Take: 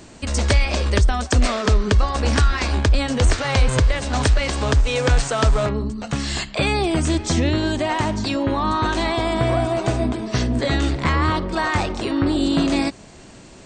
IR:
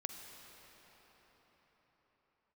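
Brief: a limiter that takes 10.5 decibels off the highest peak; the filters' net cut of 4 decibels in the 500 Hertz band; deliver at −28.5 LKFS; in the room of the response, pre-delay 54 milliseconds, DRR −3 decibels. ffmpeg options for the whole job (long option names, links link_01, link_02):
-filter_complex "[0:a]equalizer=frequency=500:width_type=o:gain=-5.5,alimiter=limit=-16.5dB:level=0:latency=1,asplit=2[link_01][link_02];[1:a]atrim=start_sample=2205,adelay=54[link_03];[link_02][link_03]afir=irnorm=-1:irlink=0,volume=4.5dB[link_04];[link_01][link_04]amix=inputs=2:normalize=0,volume=-8dB"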